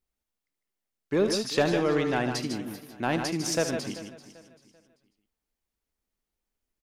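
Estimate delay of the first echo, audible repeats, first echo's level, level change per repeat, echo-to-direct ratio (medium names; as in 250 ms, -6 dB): 74 ms, 7, -11.5 dB, no regular repeats, -4.5 dB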